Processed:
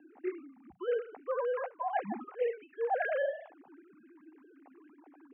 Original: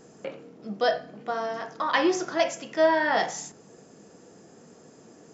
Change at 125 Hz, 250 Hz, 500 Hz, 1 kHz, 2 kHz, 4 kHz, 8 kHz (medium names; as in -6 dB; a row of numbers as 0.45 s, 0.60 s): under -10 dB, -13.5 dB, -6.5 dB, -9.0 dB, -11.5 dB, under -20 dB, no reading